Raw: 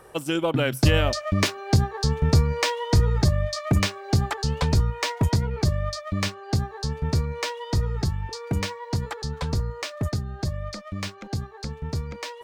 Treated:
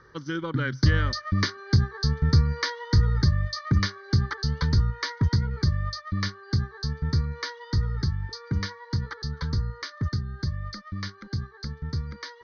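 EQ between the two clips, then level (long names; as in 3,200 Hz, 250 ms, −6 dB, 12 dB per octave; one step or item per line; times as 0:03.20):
Chebyshev low-pass with heavy ripple 6,300 Hz, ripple 6 dB
parametric band 99 Hz +4.5 dB 2.5 octaves
phaser with its sweep stopped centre 2,600 Hz, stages 6
+1.5 dB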